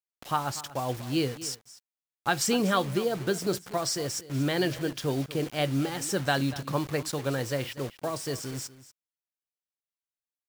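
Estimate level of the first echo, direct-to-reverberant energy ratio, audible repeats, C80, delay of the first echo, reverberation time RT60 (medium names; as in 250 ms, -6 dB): -16.5 dB, no reverb, 1, no reverb, 241 ms, no reverb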